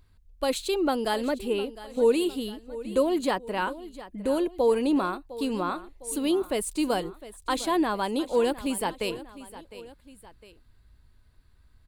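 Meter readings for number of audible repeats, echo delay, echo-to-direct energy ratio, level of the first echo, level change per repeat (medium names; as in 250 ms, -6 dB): 2, 707 ms, -15.0 dB, -16.0 dB, -6.0 dB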